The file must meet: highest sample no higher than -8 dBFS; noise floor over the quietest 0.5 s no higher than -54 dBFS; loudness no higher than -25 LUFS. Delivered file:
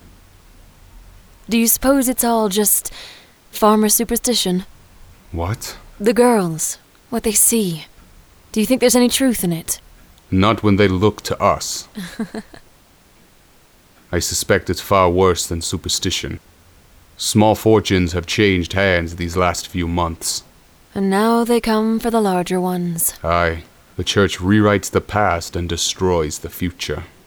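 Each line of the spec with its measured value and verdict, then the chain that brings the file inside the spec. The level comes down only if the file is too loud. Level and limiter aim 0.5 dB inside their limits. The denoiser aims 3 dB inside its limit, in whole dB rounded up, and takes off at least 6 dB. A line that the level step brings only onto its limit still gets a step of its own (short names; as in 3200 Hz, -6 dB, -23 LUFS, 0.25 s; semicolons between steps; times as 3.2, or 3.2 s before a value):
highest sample -2.0 dBFS: fail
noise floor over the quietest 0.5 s -51 dBFS: fail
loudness -17.0 LUFS: fail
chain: gain -8.5 dB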